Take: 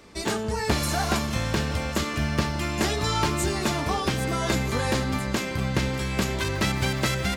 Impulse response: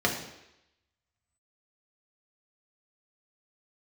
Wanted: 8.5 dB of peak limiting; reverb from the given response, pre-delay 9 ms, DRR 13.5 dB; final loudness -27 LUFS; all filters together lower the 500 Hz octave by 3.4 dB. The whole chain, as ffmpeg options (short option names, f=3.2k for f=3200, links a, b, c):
-filter_complex "[0:a]equalizer=f=500:t=o:g=-4.5,alimiter=limit=-19.5dB:level=0:latency=1,asplit=2[a][b];[1:a]atrim=start_sample=2205,adelay=9[c];[b][c]afir=irnorm=-1:irlink=0,volume=-26dB[d];[a][d]amix=inputs=2:normalize=0,volume=2.5dB"